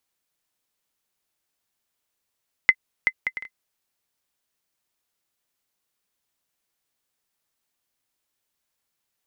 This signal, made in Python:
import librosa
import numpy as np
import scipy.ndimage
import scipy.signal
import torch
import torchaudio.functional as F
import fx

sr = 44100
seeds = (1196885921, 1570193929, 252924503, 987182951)

y = fx.bouncing_ball(sr, first_gap_s=0.38, ratio=0.52, hz=2050.0, decay_ms=58.0, level_db=-2.5)